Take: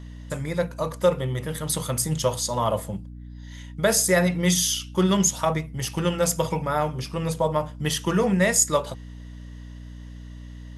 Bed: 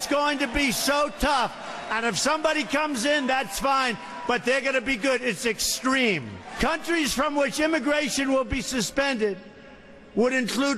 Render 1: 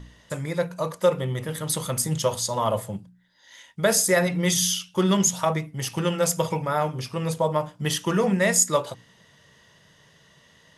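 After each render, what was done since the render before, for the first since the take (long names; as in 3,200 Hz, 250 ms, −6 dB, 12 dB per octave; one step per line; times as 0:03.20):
hum removal 60 Hz, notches 5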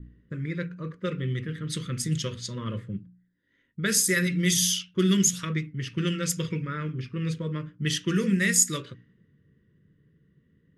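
Chebyshev band-stop filter 340–1,700 Hz, order 2
low-pass that shuts in the quiet parts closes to 570 Hz, open at −20 dBFS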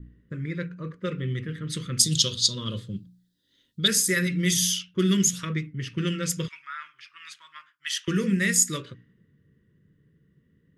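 0:01.99–0:03.88: high shelf with overshoot 2,800 Hz +11 dB, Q 3
0:06.48–0:08.08: inverse Chebyshev high-pass filter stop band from 520 Hz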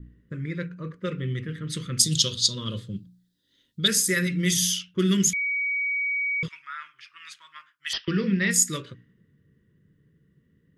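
0:05.33–0:06.43: beep over 2,260 Hz −23.5 dBFS
0:07.93–0:08.51: bad sample-rate conversion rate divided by 4×, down none, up filtered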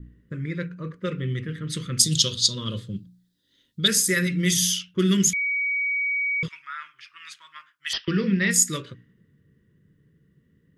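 level +1.5 dB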